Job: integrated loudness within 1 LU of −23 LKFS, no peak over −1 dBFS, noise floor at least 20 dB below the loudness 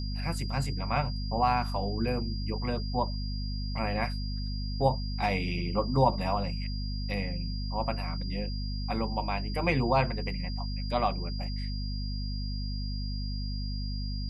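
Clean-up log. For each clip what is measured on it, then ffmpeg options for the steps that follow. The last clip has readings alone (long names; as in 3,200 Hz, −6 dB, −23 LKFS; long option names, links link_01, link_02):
mains hum 50 Hz; hum harmonics up to 250 Hz; level of the hum −31 dBFS; interfering tone 4,800 Hz; level of the tone −42 dBFS; integrated loudness −31.5 LKFS; sample peak −10.0 dBFS; target loudness −23.0 LKFS
→ -af "bandreject=frequency=50:width_type=h:width=4,bandreject=frequency=100:width_type=h:width=4,bandreject=frequency=150:width_type=h:width=4,bandreject=frequency=200:width_type=h:width=4,bandreject=frequency=250:width_type=h:width=4"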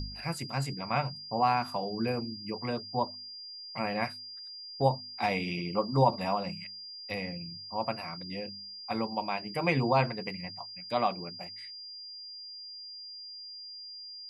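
mains hum none found; interfering tone 4,800 Hz; level of the tone −42 dBFS
→ -af "bandreject=frequency=4800:width=30"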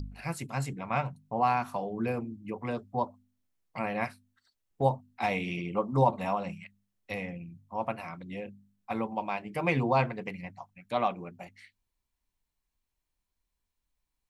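interfering tone none found; integrated loudness −32.0 LKFS; sample peak −11.5 dBFS; target loudness −23.0 LKFS
→ -af "volume=9dB"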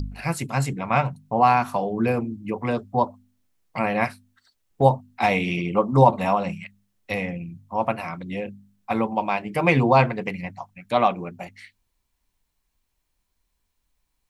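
integrated loudness −23.0 LKFS; sample peak −2.5 dBFS; background noise floor −75 dBFS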